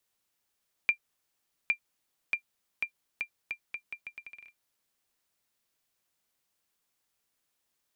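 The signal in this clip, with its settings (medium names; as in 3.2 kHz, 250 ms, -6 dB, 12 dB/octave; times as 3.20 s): bouncing ball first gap 0.81 s, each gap 0.78, 2.38 kHz, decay 90 ms -14 dBFS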